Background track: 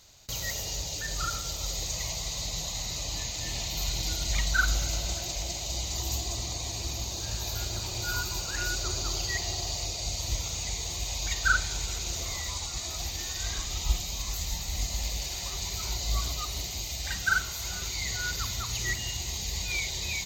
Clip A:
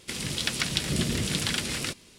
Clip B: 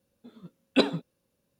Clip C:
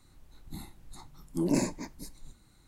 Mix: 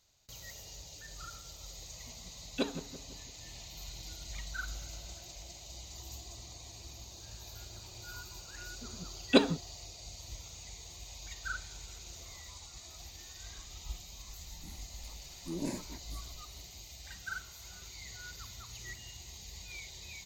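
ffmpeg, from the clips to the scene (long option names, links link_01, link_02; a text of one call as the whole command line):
ffmpeg -i bed.wav -i cue0.wav -i cue1.wav -i cue2.wav -filter_complex "[2:a]asplit=2[link_01][link_02];[0:a]volume=-15dB[link_03];[link_01]asplit=2[link_04][link_05];[link_05]adelay=168,lowpass=frequency=1600:poles=1,volume=-12dB,asplit=2[link_06][link_07];[link_07]adelay=168,lowpass=frequency=1600:poles=1,volume=0.53,asplit=2[link_08][link_09];[link_09]adelay=168,lowpass=frequency=1600:poles=1,volume=0.53,asplit=2[link_10][link_11];[link_11]adelay=168,lowpass=frequency=1600:poles=1,volume=0.53,asplit=2[link_12][link_13];[link_13]adelay=168,lowpass=frequency=1600:poles=1,volume=0.53,asplit=2[link_14][link_15];[link_15]adelay=168,lowpass=frequency=1600:poles=1,volume=0.53[link_16];[link_04][link_06][link_08][link_10][link_12][link_14][link_16]amix=inputs=7:normalize=0,atrim=end=1.59,asetpts=PTS-STARTPTS,volume=-11dB,afade=type=in:duration=0.004:curve=hsin,afade=type=out:start_time=1.586:duration=0.004:curve=hsin,adelay=1820[link_17];[link_02]atrim=end=1.59,asetpts=PTS-STARTPTS,volume=-1dB,afade=type=in:duration=0.004:curve=hsin,afade=type=out:start_time=1.586:duration=0.004:curve=hsin,adelay=8570[link_18];[3:a]atrim=end=2.67,asetpts=PTS-STARTPTS,volume=-10dB,afade=type=in:duration=0.004:curve=hsin,afade=type=out:start_time=2.666:duration=0.004:curve=hsin,adelay=14110[link_19];[link_03][link_17][link_18][link_19]amix=inputs=4:normalize=0" out.wav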